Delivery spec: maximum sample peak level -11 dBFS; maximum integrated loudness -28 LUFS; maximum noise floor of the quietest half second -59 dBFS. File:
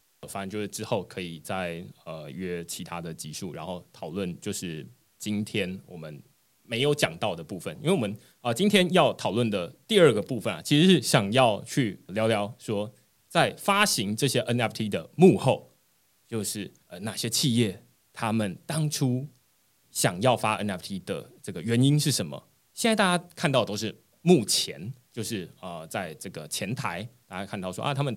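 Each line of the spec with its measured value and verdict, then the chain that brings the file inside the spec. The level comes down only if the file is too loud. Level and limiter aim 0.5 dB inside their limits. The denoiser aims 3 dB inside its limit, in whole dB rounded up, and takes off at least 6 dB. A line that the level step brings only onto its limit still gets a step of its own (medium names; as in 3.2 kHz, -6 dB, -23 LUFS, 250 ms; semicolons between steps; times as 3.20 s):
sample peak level -3.5 dBFS: fail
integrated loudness -26.5 LUFS: fail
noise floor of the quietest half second -66 dBFS: pass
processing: trim -2 dB; peak limiter -11.5 dBFS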